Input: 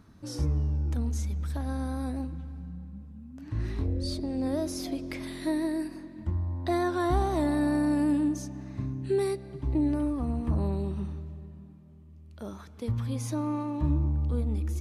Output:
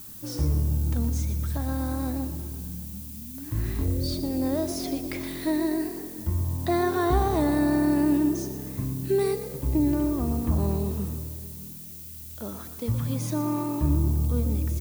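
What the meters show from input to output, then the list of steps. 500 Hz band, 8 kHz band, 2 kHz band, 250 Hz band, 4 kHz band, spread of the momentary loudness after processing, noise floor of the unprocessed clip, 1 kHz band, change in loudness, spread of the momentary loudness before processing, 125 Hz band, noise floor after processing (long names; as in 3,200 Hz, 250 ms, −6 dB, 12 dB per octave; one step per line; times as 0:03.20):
+3.5 dB, +6.5 dB, +3.5 dB, +3.5 dB, +4.0 dB, 13 LU, −50 dBFS, +3.5 dB, +3.5 dB, 15 LU, +3.5 dB, −41 dBFS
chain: background noise violet −46 dBFS
on a send: echo with shifted repeats 119 ms, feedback 45%, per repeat +40 Hz, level −12 dB
on the sum: level +3 dB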